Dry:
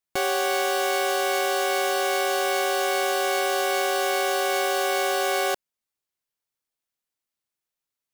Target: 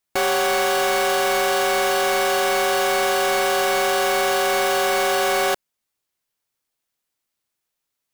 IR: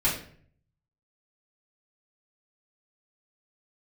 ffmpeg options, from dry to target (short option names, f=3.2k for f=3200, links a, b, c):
-af "asoftclip=type=hard:threshold=-24dB,volume=7dB"